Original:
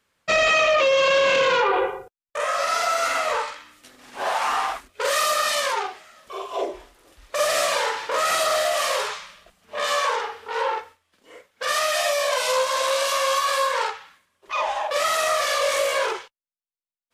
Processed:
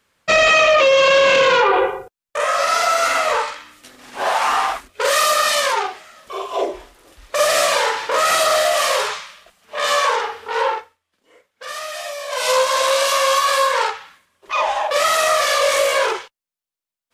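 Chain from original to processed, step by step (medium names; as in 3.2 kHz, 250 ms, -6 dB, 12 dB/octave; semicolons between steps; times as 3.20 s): 9.21–9.84 s: bass shelf 350 Hz -10 dB; 10.67–12.50 s: dip -12 dB, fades 0.22 s; trim +5.5 dB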